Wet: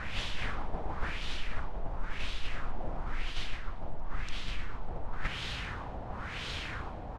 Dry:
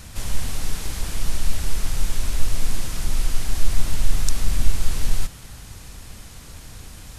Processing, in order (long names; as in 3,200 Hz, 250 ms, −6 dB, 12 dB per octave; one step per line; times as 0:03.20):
low-shelf EQ 260 Hz −8.5 dB
reversed playback
downward compressor 12 to 1, threshold −33 dBFS, peak gain reduction 20 dB
reversed playback
backwards echo 289 ms −6 dB
auto-filter low-pass sine 0.96 Hz 700–3,400 Hz
on a send: repeating echo 116 ms, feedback 56%, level −19 dB
on the sum: level +5.5 dB